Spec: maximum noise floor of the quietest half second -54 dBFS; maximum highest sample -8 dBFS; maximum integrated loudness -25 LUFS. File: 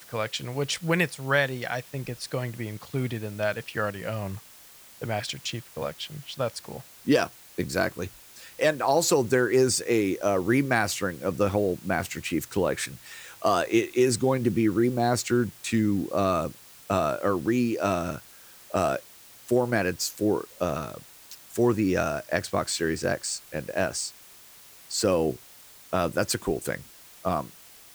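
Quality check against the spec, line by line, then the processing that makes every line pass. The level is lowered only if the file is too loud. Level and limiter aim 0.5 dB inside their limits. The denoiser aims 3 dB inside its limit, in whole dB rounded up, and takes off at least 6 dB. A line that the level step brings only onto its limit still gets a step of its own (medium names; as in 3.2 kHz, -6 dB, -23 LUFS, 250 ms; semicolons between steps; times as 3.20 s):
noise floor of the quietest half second -50 dBFS: fail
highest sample -8.5 dBFS: pass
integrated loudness -27.0 LUFS: pass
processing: noise reduction 7 dB, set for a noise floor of -50 dBFS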